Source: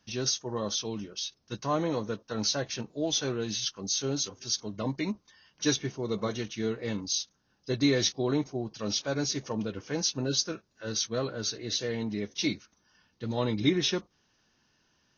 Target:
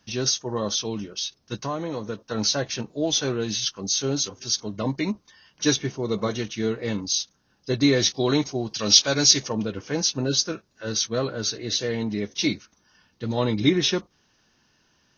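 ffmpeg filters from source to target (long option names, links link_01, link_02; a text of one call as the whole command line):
ffmpeg -i in.wav -filter_complex "[0:a]asettb=1/sr,asplit=3[link_01][link_02][link_03];[link_01]atrim=end=1.614[link_04];[link_02]atrim=start=1.61:end=2.18,asetpts=PTS-STARTPTS,afade=type=in:duration=0.004:curve=qsin,afade=type=out:start_time=0.566:duration=0.004:curve=qsin,acompressor=threshold=-32dB:ratio=4[link_05];[link_03]atrim=start=2.176[link_06];[link_04][link_05]acrossfade=duration=0.004:curve1=hsin:curve2=qsin[link_07];[link_07][link_06]acrossfade=duration=0.004:curve1=qsin:curve2=hsin,asplit=3[link_08][link_09][link_10];[link_08]afade=type=out:start_time=8.13:duration=0.02[link_11];[link_09]equalizer=frequency=4800:width=0.43:gain=11,afade=type=in:start_time=8.13:duration=0.02,afade=type=out:start_time=9.46:duration=0.02[link_12];[link_10]afade=type=in:start_time=9.46:duration=0.02[link_13];[link_11][link_12][link_13]amix=inputs=3:normalize=0,volume=5.5dB" out.wav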